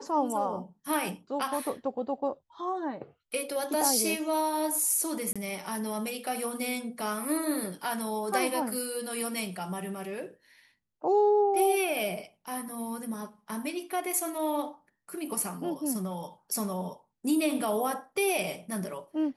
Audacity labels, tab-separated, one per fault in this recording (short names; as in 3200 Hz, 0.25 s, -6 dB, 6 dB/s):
5.330000	5.360000	gap 26 ms